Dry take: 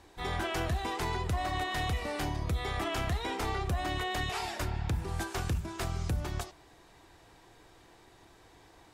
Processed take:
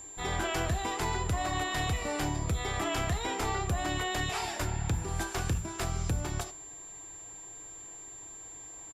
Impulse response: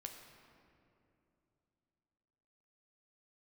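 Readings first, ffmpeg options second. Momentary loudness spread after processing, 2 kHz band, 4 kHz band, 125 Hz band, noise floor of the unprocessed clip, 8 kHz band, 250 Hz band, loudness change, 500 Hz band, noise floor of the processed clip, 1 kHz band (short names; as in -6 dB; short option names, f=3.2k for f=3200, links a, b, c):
12 LU, +1.5 dB, +1.5 dB, +1.0 dB, -59 dBFS, +9.5 dB, +2.0 dB, +0.5 dB, +1.5 dB, -47 dBFS, +1.0 dB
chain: -filter_complex "[0:a]aresample=32000,aresample=44100,asplit=2[a][b];[1:a]atrim=start_sample=2205,atrim=end_sample=6174,asetrate=66150,aresample=44100[c];[b][c]afir=irnorm=-1:irlink=0,volume=5.5dB[d];[a][d]amix=inputs=2:normalize=0,aeval=exprs='val(0)+0.00891*sin(2*PI*7300*n/s)':c=same,volume=-3dB"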